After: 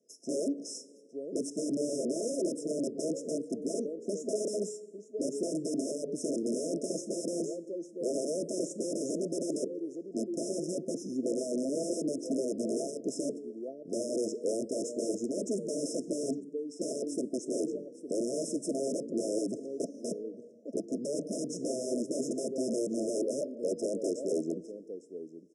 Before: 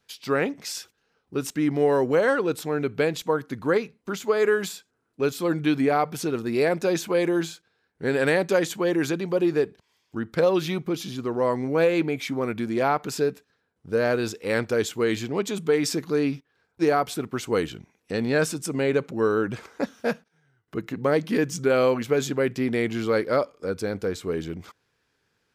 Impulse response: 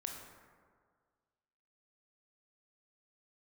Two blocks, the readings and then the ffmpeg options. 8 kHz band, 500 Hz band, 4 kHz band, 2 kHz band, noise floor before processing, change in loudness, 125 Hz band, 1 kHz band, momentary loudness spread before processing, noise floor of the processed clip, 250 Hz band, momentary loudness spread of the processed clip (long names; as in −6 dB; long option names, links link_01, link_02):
−1.5 dB, −9.5 dB, −11.5 dB, below −40 dB, −74 dBFS, −9.5 dB, −16.0 dB, below −20 dB, 10 LU, −52 dBFS, −7.0 dB, 7 LU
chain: -filter_complex "[0:a]aecho=1:1:856:0.112,acrossover=split=390|3000[link_01][link_02][link_03];[link_02]acompressor=threshold=-24dB:ratio=10[link_04];[link_01][link_04][link_03]amix=inputs=3:normalize=0,asplit=2[link_05][link_06];[1:a]atrim=start_sample=2205,asetrate=48510,aresample=44100,highshelf=frequency=4800:gain=9[link_07];[link_06][link_07]afir=irnorm=-1:irlink=0,volume=-13.5dB[link_08];[link_05][link_08]amix=inputs=2:normalize=0,aeval=exprs='(mod(11.2*val(0)+1,2)-1)/11.2':channel_layout=same,asplit=2[link_09][link_10];[link_10]acompressor=threshold=-38dB:ratio=6,volume=-1.5dB[link_11];[link_09][link_11]amix=inputs=2:normalize=0,afftfilt=real='re*(1-between(b*sr/4096,680,5100))':imag='im*(1-between(b*sr/4096,680,5100))':win_size=4096:overlap=0.75,highpass=frequency=260:width=0.5412,highpass=frequency=260:width=1.3066,equalizer=frequency=5300:width=0.45:gain=-5.5,aresample=22050,aresample=44100,lowshelf=frequency=460:gain=9,volume=-6dB"